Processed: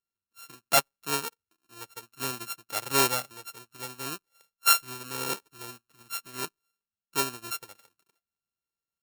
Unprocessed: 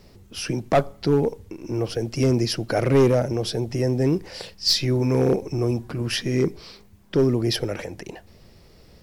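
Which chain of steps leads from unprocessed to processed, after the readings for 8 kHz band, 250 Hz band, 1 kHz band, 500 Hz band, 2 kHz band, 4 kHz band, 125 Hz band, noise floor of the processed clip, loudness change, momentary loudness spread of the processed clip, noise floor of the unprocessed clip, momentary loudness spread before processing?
+4.0 dB, −19.5 dB, 0.0 dB, −16.0 dB, +0.5 dB, −5.0 dB, −22.5 dB, below −85 dBFS, −5.5 dB, 20 LU, −52 dBFS, 12 LU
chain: samples sorted by size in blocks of 32 samples
spectral tilt +3 dB per octave
expander for the loud parts 2.5 to 1, over −39 dBFS
level −3.5 dB

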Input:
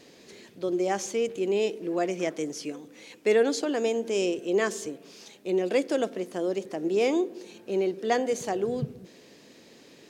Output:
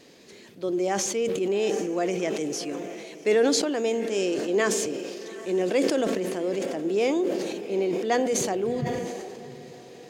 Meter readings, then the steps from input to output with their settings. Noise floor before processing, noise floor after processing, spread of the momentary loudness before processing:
−54 dBFS, −48 dBFS, 13 LU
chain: on a send: feedback delay with all-pass diffusion 760 ms, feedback 43%, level −14 dB
on the sum: level that may fall only so fast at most 28 dB per second

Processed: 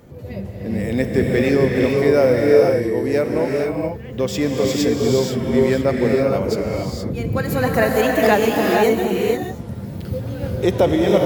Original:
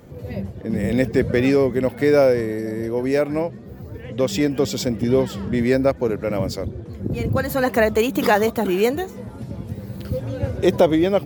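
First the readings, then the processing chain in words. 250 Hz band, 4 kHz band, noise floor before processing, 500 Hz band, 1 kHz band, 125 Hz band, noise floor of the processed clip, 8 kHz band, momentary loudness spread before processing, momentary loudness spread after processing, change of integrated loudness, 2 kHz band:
+1.5 dB, +2.5 dB, −37 dBFS, +3.0 dB, +2.5 dB, +2.5 dB, −32 dBFS, +2.5 dB, 15 LU, 12 LU, +2.0 dB, +2.5 dB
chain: reverb whose tail is shaped and stops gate 500 ms rising, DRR −1 dB
level −1 dB

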